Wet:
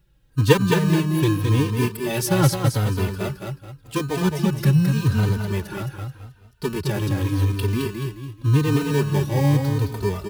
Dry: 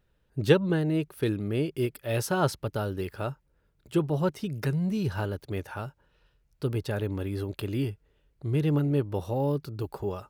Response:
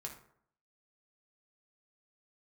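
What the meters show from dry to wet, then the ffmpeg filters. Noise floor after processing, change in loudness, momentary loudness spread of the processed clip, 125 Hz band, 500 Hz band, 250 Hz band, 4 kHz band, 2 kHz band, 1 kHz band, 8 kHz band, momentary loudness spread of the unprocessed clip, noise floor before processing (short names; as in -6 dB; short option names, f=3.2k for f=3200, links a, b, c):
-54 dBFS, +8.0 dB, 12 LU, +10.0 dB, +4.0 dB, +7.0 dB, +9.5 dB, +8.0 dB, +7.0 dB, +12.0 dB, 11 LU, -70 dBFS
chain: -filter_complex "[0:a]highshelf=f=2.6k:g=10,acrossover=split=730[a][b];[a]acrusher=samples=32:mix=1:aa=0.000001[c];[c][b]amix=inputs=2:normalize=0,lowshelf=f=350:g=11,aecho=1:1:215|430|645|860:0.562|0.18|0.0576|0.0184,asplit=2[d][e];[e]adelay=3.1,afreqshift=-0.86[f];[d][f]amix=inputs=2:normalize=1,volume=3dB"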